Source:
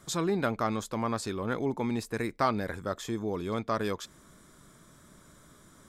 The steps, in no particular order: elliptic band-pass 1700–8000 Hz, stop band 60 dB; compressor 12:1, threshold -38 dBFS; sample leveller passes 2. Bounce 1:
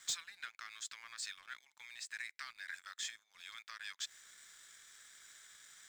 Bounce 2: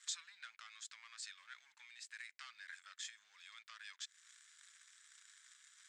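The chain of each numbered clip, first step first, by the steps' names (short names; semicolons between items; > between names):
compressor > elliptic band-pass > sample leveller; sample leveller > compressor > elliptic band-pass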